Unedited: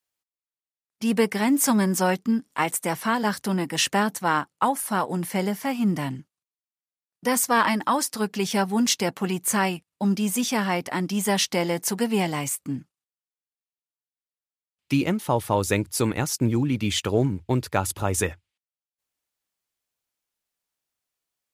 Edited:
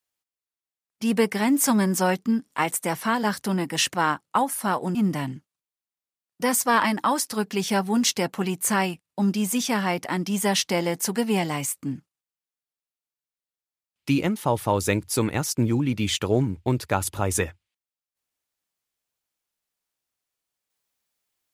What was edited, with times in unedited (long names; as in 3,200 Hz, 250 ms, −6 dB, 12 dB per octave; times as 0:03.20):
0:03.94–0:04.21: remove
0:05.22–0:05.78: remove